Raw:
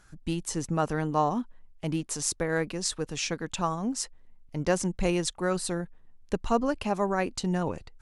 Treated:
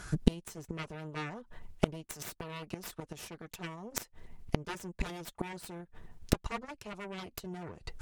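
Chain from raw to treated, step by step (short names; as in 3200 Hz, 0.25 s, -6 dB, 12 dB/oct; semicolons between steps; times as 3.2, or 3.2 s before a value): added harmonics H 2 -34 dB, 6 -7 dB, 7 -10 dB, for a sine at -10 dBFS; notch comb 270 Hz; flipped gate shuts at -21 dBFS, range -29 dB; gain +13 dB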